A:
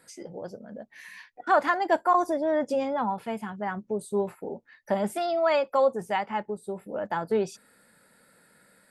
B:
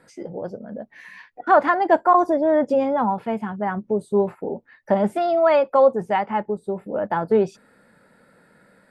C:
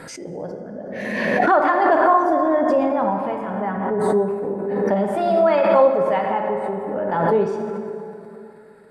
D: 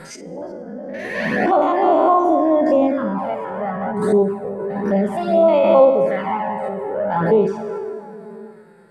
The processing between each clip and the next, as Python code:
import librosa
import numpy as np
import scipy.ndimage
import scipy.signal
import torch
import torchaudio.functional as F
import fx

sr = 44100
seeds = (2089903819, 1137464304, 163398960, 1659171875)

y1 = fx.lowpass(x, sr, hz=1300.0, slope=6)
y1 = y1 * 10.0 ** (8.0 / 20.0)
y2 = fx.rev_plate(y1, sr, seeds[0], rt60_s=3.0, hf_ratio=0.55, predelay_ms=0, drr_db=2.0)
y2 = fx.pre_swell(y2, sr, db_per_s=29.0)
y2 = y2 * 10.0 ** (-2.5 / 20.0)
y3 = fx.spec_steps(y2, sr, hold_ms=50)
y3 = fx.env_flanger(y3, sr, rest_ms=6.3, full_db=-14.5)
y3 = y3 * 10.0 ** (5.0 / 20.0)